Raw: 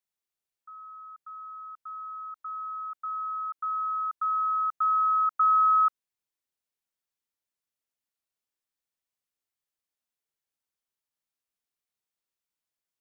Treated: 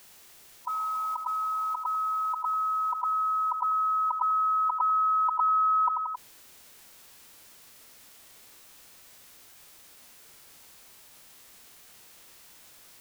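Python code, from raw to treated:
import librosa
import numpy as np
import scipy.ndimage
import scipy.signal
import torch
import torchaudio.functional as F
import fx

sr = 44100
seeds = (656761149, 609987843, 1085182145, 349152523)

p1 = fx.formant_shift(x, sr, semitones=-5)
p2 = p1 + fx.echo_feedback(p1, sr, ms=90, feedback_pct=39, wet_db=-17, dry=0)
p3 = fx.env_flatten(p2, sr, amount_pct=70)
y = p3 * librosa.db_to_amplitude(-3.0)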